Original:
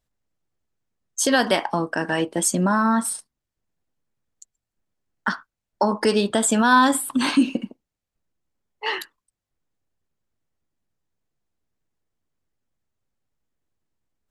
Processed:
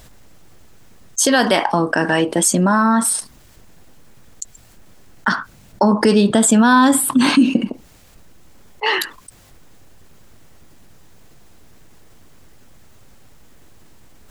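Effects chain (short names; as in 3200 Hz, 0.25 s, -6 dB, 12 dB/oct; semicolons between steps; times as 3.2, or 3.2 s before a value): 5.31–7.63 bell 160 Hz +8 dB 2 oct; fast leveller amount 50%; gain -1 dB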